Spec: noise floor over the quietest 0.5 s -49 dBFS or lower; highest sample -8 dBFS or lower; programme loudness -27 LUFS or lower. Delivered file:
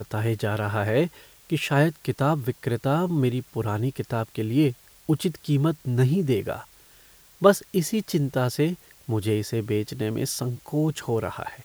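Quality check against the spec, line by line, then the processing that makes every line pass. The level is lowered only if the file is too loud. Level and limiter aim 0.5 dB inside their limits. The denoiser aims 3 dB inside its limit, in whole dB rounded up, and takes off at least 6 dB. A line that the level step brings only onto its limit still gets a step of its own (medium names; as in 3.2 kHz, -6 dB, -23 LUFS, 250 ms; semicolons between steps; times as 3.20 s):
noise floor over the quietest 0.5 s -53 dBFS: pass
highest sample -2.5 dBFS: fail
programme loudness -25.5 LUFS: fail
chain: trim -2 dB; peak limiter -8.5 dBFS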